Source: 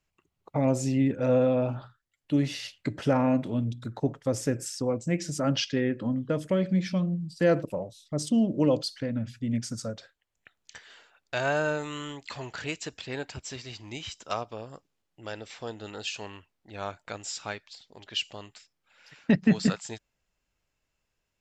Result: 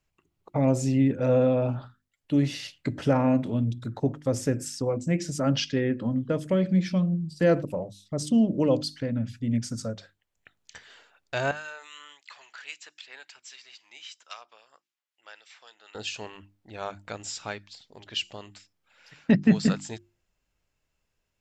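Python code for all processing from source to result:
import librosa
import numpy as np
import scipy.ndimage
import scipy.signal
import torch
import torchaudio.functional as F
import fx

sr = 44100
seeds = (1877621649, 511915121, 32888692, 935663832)

y = fx.chain(x, sr, fx.highpass(hz=1500.0, slope=12),
    fx.high_shelf(hz=3700.0, db=-5.5),
    fx.harmonic_tremolo(hz=3.7, depth_pct=50, crossover_hz=1900.0), at=(11.51, 15.95))
y = fx.low_shelf(y, sr, hz=340.0, db=4.0)
y = fx.hum_notches(y, sr, base_hz=50, count=7)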